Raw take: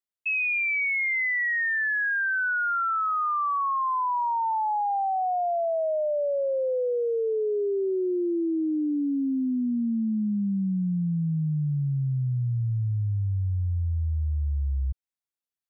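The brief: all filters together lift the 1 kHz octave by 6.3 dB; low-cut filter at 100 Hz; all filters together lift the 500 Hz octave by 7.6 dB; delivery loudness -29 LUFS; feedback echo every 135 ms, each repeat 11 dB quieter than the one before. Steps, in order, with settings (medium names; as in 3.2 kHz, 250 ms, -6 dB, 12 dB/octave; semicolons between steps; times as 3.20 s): high-pass 100 Hz; peaking EQ 500 Hz +8 dB; peaking EQ 1 kHz +5.5 dB; feedback delay 135 ms, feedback 28%, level -11 dB; trim -8 dB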